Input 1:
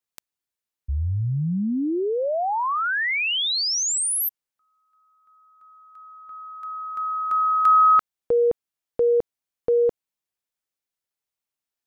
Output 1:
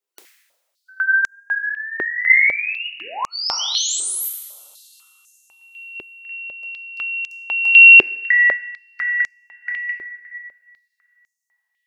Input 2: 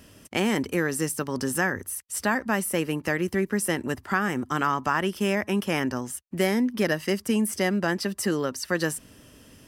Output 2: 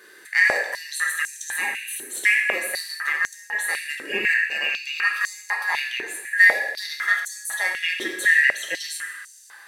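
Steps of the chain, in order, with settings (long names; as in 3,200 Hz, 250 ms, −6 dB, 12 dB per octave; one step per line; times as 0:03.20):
band-splitting scrambler in four parts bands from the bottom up 2143
in parallel at −2.5 dB: downward compressor, threshold −34 dBFS
on the sum: coupled-rooms reverb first 0.97 s, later 3.1 s, from −18 dB, DRR 0 dB
high-pass on a step sequencer 4 Hz 380–6,400 Hz
level −5 dB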